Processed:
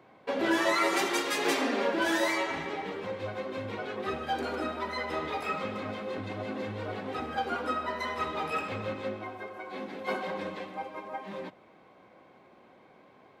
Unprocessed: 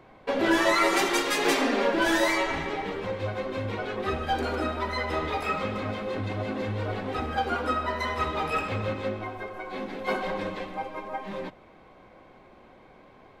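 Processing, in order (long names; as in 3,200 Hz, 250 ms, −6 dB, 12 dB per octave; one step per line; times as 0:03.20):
high-pass filter 130 Hz 12 dB per octave
level −4 dB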